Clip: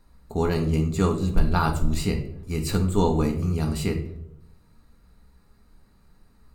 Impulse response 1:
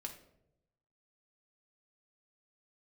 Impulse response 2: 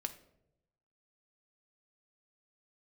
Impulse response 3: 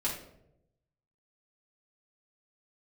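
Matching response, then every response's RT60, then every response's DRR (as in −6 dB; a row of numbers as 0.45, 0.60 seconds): 1; 0.85, 0.85, 0.80 seconds; 2.5, 7.0, −6.5 decibels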